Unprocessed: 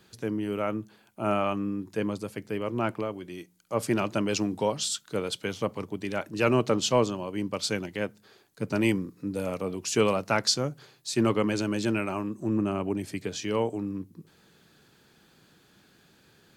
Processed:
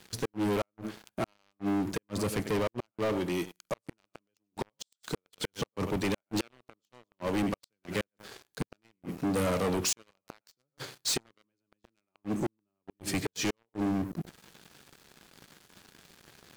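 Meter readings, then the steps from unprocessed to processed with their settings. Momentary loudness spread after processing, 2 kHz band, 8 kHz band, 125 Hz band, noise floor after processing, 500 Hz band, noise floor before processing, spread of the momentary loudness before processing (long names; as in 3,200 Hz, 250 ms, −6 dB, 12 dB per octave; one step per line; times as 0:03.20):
13 LU, −5.5 dB, −3.0 dB, −4.5 dB, below −85 dBFS, −6.5 dB, −61 dBFS, 10 LU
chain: feedback echo with a high-pass in the loop 97 ms, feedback 16%, high-pass 230 Hz, level −16 dB
gate with flip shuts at −20 dBFS, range −39 dB
leveller curve on the samples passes 5
level −6.5 dB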